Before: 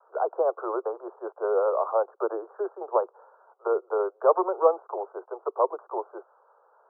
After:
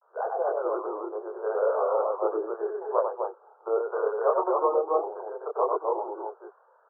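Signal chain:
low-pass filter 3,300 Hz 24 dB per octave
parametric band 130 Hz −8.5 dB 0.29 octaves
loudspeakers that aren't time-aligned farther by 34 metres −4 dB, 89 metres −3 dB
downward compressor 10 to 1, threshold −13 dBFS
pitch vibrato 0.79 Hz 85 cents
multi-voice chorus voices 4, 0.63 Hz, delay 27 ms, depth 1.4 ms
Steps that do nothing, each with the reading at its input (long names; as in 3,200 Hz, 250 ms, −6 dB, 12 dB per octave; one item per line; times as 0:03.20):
low-pass filter 3,300 Hz: nothing at its input above 1,500 Hz
parametric band 130 Hz: nothing at its input below 300 Hz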